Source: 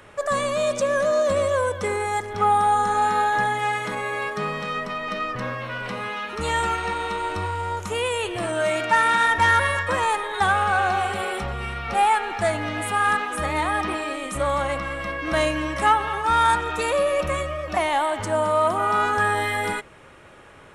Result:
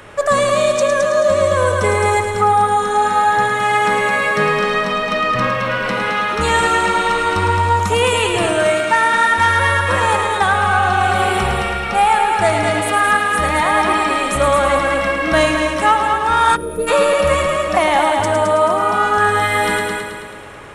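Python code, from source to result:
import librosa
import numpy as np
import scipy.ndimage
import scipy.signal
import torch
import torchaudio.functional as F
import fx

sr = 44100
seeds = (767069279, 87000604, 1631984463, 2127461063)

y = fx.echo_heads(x, sr, ms=108, heads='first and second', feedback_pct=51, wet_db=-7)
y = fx.spec_box(y, sr, start_s=16.56, length_s=0.32, low_hz=670.0, high_hz=9300.0, gain_db=-22)
y = fx.rider(y, sr, range_db=3, speed_s=0.5)
y = y * 10.0 ** (6.0 / 20.0)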